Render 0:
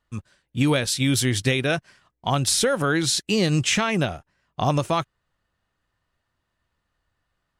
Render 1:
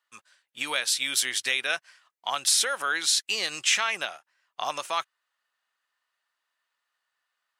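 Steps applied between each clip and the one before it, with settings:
high-pass filter 1,100 Hz 12 dB per octave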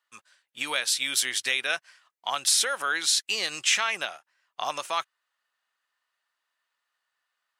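no processing that can be heard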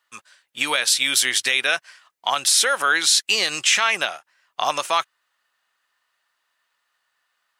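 brickwall limiter −15 dBFS, peak gain reduction 5 dB
level +8.5 dB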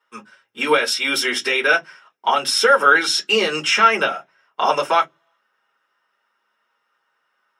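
convolution reverb RT60 0.15 s, pre-delay 3 ms, DRR −3 dB
level −10 dB

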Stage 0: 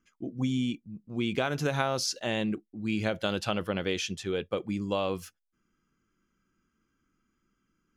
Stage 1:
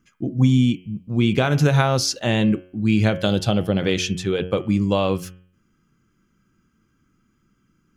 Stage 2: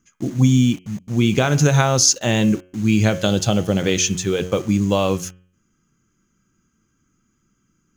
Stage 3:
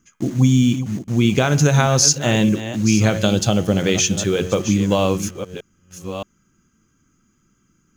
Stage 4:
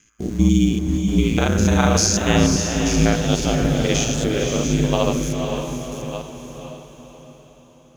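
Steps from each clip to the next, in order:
gain on a spectral selection 0:03.26–0:03.79, 820–3,000 Hz −7 dB; parametric band 120 Hz +9 dB 1.6 octaves; hum removal 91.05 Hz, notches 36; level +8 dB
in parallel at −6 dB: bit-depth reduction 6 bits, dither none; on the sum: parametric band 6,500 Hz +14.5 dB 0.3 octaves; level −2 dB
delay that plays each chunk backwards 623 ms, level −12 dB; in parallel at −2 dB: downward compressor, threshold −23 dBFS, peak gain reduction 12.5 dB; on the sum: level −1.5 dB
spectrum averaged block by block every 100 ms; ring modulation 55 Hz; feedback delay with all-pass diffusion 518 ms, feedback 45%, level −5 dB; level +2 dB

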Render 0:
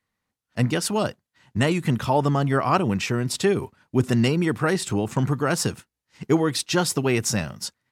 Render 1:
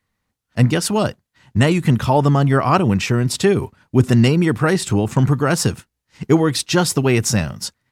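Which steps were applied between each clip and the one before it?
low-shelf EQ 110 Hz +9 dB
level +4.5 dB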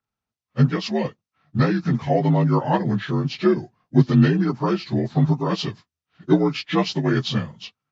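partials spread apart or drawn together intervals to 82%
expander for the loud parts 1.5 to 1, over −31 dBFS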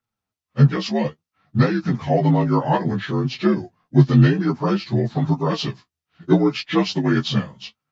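flanger 0.6 Hz, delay 7.9 ms, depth 8 ms, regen +26%
level +5 dB

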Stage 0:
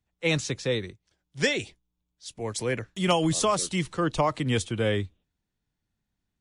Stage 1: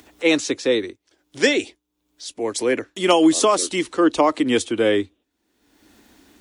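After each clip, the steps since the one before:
high-pass filter 41 Hz
low shelf with overshoot 210 Hz −11 dB, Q 3
upward compression, threshold −37 dBFS
level +6 dB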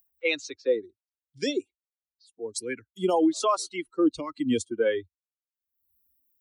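spectral dynamics exaggerated over time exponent 2
brickwall limiter −12.5 dBFS, peak gain reduction 8 dB
phaser with staggered stages 0.64 Hz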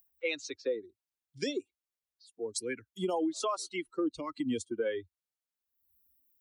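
downward compressor 2.5 to 1, threshold −33 dBFS, peak gain reduction 10.5 dB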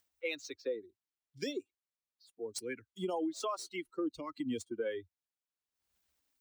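running median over 3 samples
level −4 dB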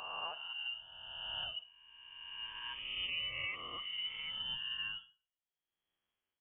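peak hold with a rise ahead of every peak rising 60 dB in 2.01 s
four-comb reverb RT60 0.38 s, combs from 32 ms, DRR 12.5 dB
voice inversion scrambler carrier 3,300 Hz
level −7.5 dB

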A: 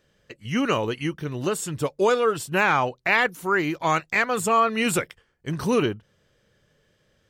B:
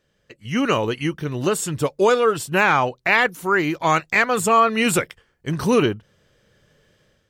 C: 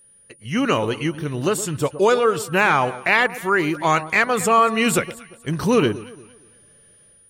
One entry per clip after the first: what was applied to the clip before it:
automatic gain control gain up to 9 dB; level −3 dB
steady tone 9,600 Hz −50 dBFS; delay that swaps between a low-pass and a high-pass 116 ms, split 1,100 Hz, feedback 53%, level −13.5 dB

